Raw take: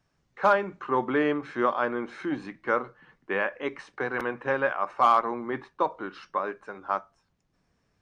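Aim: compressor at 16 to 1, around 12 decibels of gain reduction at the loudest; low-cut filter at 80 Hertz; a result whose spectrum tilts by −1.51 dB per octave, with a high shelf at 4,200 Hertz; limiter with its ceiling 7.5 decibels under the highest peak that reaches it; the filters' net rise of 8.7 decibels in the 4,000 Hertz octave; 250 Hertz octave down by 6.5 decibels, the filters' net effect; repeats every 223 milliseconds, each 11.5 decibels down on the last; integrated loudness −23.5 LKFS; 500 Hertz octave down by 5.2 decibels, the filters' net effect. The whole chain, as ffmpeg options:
ffmpeg -i in.wav -af "highpass=80,equalizer=frequency=250:width_type=o:gain=-6.5,equalizer=frequency=500:width_type=o:gain=-5,equalizer=frequency=4000:width_type=o:gain=8.5,highshelf=frequency=4200:gain=6.5,acompressor=threshold=-28dB:ratio=16,alimiter=limit=-23dB:level=0:latency=1,aecho=1:1:223|446|669:0.266|0.0718|0.0194,volume=13dB" out.wav

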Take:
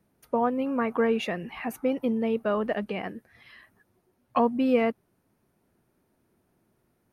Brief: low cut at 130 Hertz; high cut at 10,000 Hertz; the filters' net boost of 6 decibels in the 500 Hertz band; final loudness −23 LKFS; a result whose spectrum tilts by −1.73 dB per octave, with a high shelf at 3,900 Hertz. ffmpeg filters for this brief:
ffmpeg -i in.wav -af "highpass=130,lowpass=10000,equalizer=frequency=500:width_type=o:gain=6.5,highshelf=frequency=3900:gain=7,volume=0.5dB" out.wav

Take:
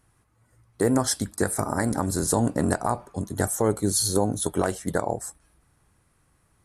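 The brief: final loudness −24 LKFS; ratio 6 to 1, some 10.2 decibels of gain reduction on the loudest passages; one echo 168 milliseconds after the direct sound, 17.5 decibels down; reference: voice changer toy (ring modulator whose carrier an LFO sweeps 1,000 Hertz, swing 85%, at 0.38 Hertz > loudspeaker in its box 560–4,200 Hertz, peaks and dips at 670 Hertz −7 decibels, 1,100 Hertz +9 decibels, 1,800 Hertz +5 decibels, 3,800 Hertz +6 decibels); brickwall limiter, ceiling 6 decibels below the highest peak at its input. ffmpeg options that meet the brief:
ffmpeg -i in.wav -af "acompressor=threshold=-29dB:ratio=6,alimiter=limit=-22dB:level=0:latency=1,aecho=1:1:168:0.133,aeval=exprs='val(0)*sin(2*PI*1000*n/s+1000*0.85/0.38*sin(2*PI*0.38*n/s))':channel_layout=same,highpass=560,equalizer=frequency=670:width_type=q:width=4:gain=-7,equalizer=frequency=1100:width_type=q:width=4:gain=9,equalizer=frequency=1800:width_type=q:width=4:gain=5,equalizer=frequency=3800:width_type=q:width=4:gain=6,lowpass=frequency=4200:width=0.5412,lowpass=frequency=4200:width=1.3066,volume=12dB" out.wav

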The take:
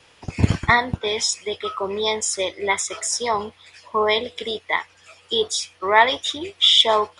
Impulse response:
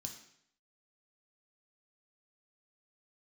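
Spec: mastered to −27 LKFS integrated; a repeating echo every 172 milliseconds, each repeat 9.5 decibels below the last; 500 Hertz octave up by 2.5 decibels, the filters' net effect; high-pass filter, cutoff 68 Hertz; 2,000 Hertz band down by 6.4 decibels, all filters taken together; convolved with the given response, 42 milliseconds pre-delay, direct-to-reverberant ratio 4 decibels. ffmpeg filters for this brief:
-filter_complex "[0:a]highpass=68,equalizer=frequency=500:width_type=o:gain=3.5,equalizer=frequency=2000:width_type=o:gain=-7,aecho=1:1:172|344|516|688:0.335|0.111|0.0365|0.012,asplit=2[link_01][link_02];[1:a]atrim=start_sample=2205,adelay=42[link_03];[link_02][link_03]afir=irnorm=-1:irlink=0,volume=1dB[link_04];[link_01][link_04]amix=inputs=2:normalize=0,volume=-8.5dB"

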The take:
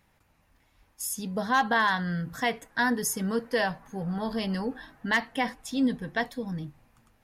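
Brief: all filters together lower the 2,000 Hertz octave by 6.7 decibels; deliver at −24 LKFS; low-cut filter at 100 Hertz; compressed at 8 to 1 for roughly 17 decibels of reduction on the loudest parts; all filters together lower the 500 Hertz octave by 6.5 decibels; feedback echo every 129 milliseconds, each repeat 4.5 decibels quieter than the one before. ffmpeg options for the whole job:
ffmpeg -i in.wav -af "highpass=100,equalizer=frequency=500:width_type=o:gain=-7.5,equalizer=frequency=2000:width_type=o:gain=-8,acompressor=threshold=-41dB:ratio=8,aecho=1:1:129|258|387|516|645|774|903|1032|1161:0.596|0.357|0.214|0.129|0.0772|0.0463|0.0278|0.0167|0.01,volume=18.5dB" out.wav

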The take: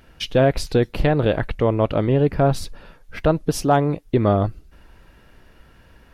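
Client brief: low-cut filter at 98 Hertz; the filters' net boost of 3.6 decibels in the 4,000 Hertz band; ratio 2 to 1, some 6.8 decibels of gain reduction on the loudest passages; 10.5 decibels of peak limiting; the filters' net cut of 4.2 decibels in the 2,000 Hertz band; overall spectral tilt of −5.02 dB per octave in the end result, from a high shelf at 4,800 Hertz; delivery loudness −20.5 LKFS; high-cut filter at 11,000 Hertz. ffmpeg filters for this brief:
ffmpeg -i in.wav -af "highpass=98,lowpass=11000,equalizer=frequency=2000:width_type=o:gain=-8,equalizer=frequency=4000:width_type=o:gain=3.5,highshelf=frequency=4800:gain=8,acompressor=threshold=-25dB:ratio=2,volume=12dB,alimiter=limit=-10dB:level=0:latency=1" out.wav

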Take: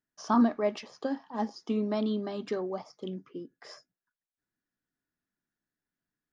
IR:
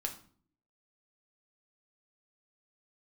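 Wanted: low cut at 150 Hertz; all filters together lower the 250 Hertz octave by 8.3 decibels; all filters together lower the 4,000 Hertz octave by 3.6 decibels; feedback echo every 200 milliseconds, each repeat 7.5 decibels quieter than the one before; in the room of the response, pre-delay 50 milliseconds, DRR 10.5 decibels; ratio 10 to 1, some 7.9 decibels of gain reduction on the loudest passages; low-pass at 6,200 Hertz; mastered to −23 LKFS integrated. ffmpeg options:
-filter_complex "[0:a]highpass=150,lowpass=6200,equalizer=frequency=250:width_type=o:gain=-8.5,equalizer=frequency=4000:width_type=o:gain=-4,acompressor=threshold=-31dB:ratio=10,aecho=1:1:200|400|600|800|1000:0.422|0.177|0.0744|0.0312|0.0131,asplit=2[link_01][link_02];[1:a]atrim=start_sample=2205,adelay=50[link_03];[link_02][link_03]afir=irnorm=-1:irlink=0,volume=-11dB[link_04];[link_01][link_04]amix=inputs=2:normalize=0,volume=15dB"

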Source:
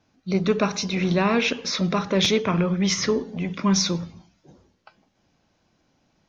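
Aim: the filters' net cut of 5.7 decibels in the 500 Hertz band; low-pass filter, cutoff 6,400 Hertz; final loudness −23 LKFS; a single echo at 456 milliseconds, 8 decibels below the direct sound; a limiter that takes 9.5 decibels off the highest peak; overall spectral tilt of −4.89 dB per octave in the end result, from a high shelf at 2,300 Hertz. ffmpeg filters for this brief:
ffmpeg -i in.wav -af "lowpass=6400,equalizer=frequency=500:width_type=o:gain=-7,highshelf=frequency=2300:gain=-6,alimiter=limit=-20.5dB:level=0:latency=1,aecho=1:1:456:0.398,volume=6dB" out.wav

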